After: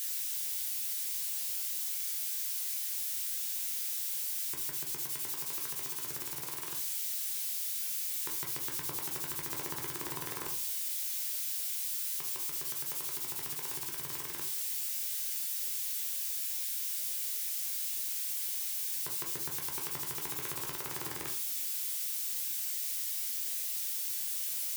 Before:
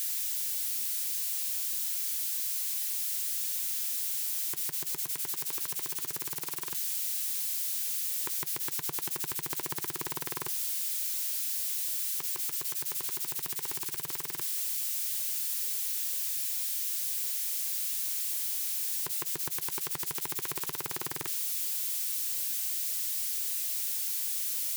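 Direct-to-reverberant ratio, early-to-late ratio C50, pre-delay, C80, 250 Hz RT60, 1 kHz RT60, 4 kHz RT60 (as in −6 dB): 0.5 dB, 9.5 dB, 10 ms, 14.5 dB, 0.45 s, 0.40 s, 0.25 s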